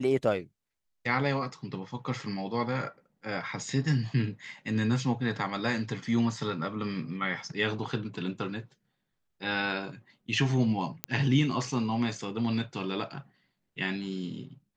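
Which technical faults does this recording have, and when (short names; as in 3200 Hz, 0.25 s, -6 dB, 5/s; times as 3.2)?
11.04 pop -11 dBFS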